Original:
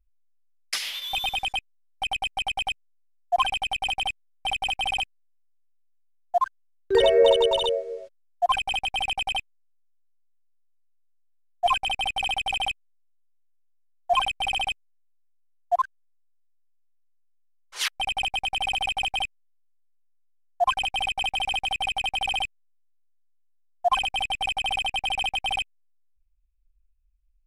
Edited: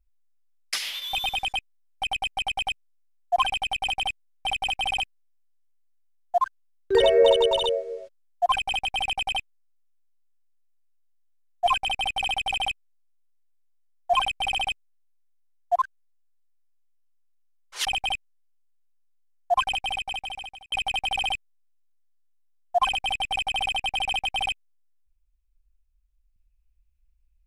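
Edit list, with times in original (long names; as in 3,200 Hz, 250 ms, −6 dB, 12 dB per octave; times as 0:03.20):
0:17.85–0:18.95: remove
0:20.78–0:21.82: fade out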